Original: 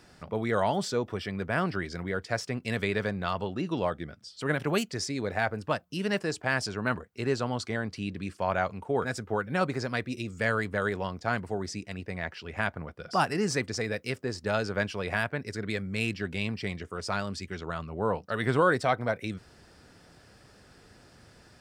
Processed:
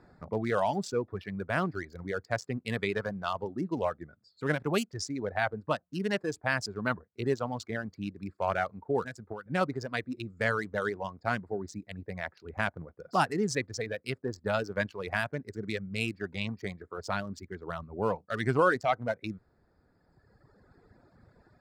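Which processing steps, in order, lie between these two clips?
local Wiener filter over 15 samples; reverb removal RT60 2 s; 9.01–9.46 s: compression 12:1, threshold -36 dBFS, peak gain reduction 12 dB

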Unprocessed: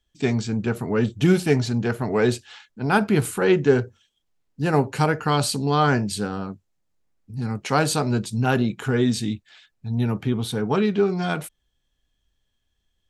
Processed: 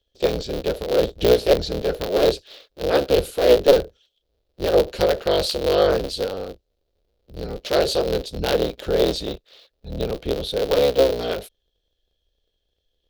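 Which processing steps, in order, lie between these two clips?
cycle switcher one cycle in 3, inverted; graphic EQ 125/250/500/1000/2000/4000/8000 Hz -11/-8/+12/-10/-7/+9/-11 dB

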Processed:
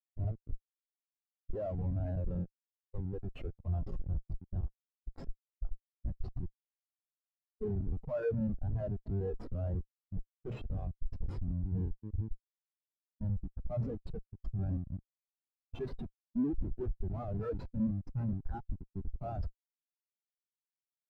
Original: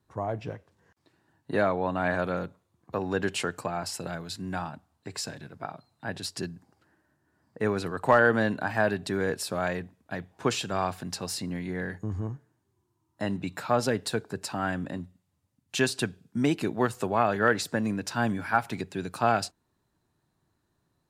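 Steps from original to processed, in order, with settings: wow and flutter 19 cents; Schmitt trigger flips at -29.5 dBFS; spectral contrast expander 2.5:1; trim +1 dB

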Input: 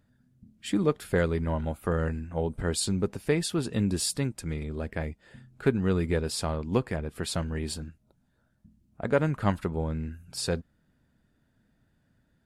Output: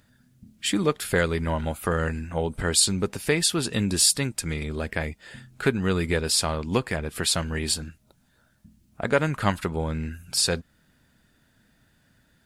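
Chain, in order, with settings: tilt shelf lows -5.5 dB, about 1.2 kHz; in parallel at -1 dB: compression, threshold -37 dBFS, peak gain reduction 15.5 dB; on the sum: trim +4 dB

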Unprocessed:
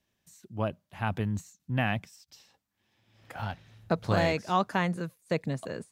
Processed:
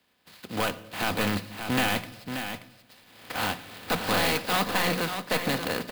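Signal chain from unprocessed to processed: spectral contrast reduction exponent 0.39; high-pass 82 Hz; hum notches 60/120/180 Hz; comb 4 ms, depth 31%; in parallel at +1 dB: compression, threshold -36 dBFS, peak gain reduction 15 dB; on the sum: saturation -24.5 dBFS, distortion -7 dB; delay 580 ms -8 dB; on a send at -13 dB: reverberation RT60 0.95 s, pre-delay 6 ms; on the sum: resampled via 11.025 kHz; sampling jitter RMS 0.027 ms; trim +5 dB

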